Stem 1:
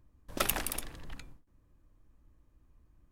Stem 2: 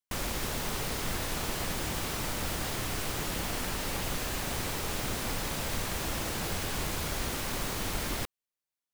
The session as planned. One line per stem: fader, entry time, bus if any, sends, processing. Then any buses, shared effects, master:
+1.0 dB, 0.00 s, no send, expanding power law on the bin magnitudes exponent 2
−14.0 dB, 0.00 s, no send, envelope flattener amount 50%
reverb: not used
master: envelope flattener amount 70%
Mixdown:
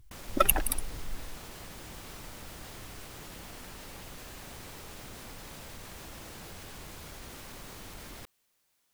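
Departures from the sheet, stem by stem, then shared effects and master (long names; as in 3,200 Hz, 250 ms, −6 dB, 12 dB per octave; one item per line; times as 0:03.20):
stem 1 +1.0 dB → +8.0 dB
master: missing envelope flattener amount 70%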